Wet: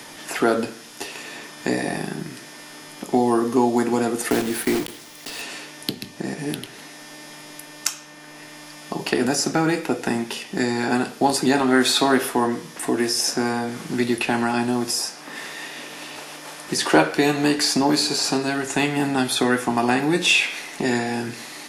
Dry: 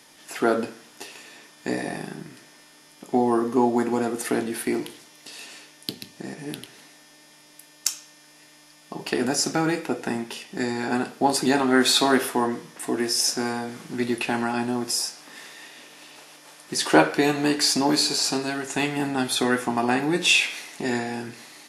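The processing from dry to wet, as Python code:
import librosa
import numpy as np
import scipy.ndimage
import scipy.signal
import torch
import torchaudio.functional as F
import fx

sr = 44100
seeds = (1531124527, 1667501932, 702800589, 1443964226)

y = fx.block_float(x, sr, bits=3, at=(4.3, 5.42))
y = fx.low_shelf(y, sr, hz=80.0, db=5.0)
y = fx.band_squash(y, sr, depth_pct=40)
y = y * librosa.db_to_amplitude(3.0)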